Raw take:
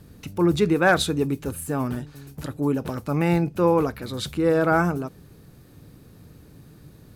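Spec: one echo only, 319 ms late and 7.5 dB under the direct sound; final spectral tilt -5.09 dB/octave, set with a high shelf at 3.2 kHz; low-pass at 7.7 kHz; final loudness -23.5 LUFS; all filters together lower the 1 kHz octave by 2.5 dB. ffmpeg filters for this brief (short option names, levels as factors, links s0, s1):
-af "lowpass=7700,equalizer=f=1000:t=o:g=-4,highshelf=f=3200:g=4,aecho=1:1:319:0.422,volume=0.944"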